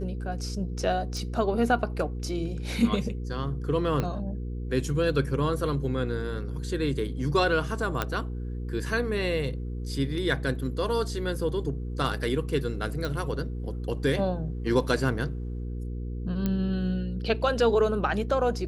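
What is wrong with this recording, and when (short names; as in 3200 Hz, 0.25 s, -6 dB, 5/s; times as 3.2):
hum 60 Hz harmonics 8 -33 dBFS
1.17 pop
4 pop -15 dBFS
8.02 pop -11 dBFS
13.05 pop
16.46 pop -15 dBFS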